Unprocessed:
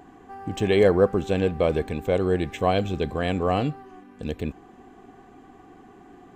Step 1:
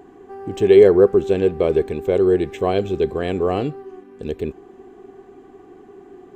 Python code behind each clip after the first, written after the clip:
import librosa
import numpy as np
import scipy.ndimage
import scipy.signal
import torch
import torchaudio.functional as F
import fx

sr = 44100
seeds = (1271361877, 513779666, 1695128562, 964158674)

y = fx.peak_eq(x, sr, hz=390.0, db=14.0, octaves=0.41)
y = y * librosa.db_to_amplitude(-1.0)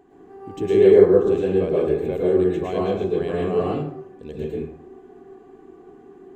y = fx.rev_plate(x, sr, seeds[0], rt60_s=0.7, hf_ratio=0.55, predelay_ms=95, drr_db=-5.5)
y = y * librosa.db_to_amplitude(-10.0)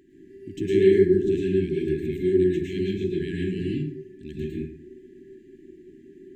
y = fx.brickwall_bandstop(x, sr, low_hz=400.0, high_hz=1600.0)